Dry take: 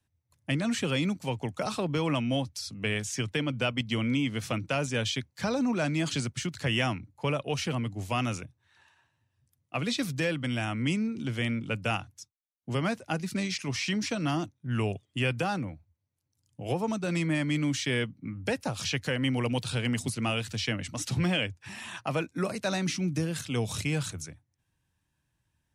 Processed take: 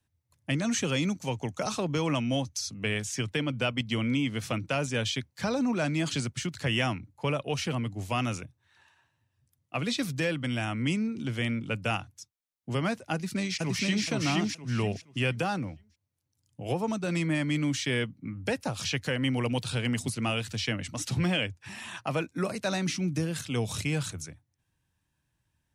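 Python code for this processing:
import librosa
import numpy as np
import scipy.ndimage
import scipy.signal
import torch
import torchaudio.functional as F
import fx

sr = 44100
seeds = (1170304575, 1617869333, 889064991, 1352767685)

y = fx.peak_eq(x, sr, hz=6300.0, db=10.5, octaves=0.27, at=(0.54, 2.7))
y = fx.echo_throw(y, sr, start_s=13.13, length_s=0.94, ms=470, feedback_pct=25, wet_db=-1.0)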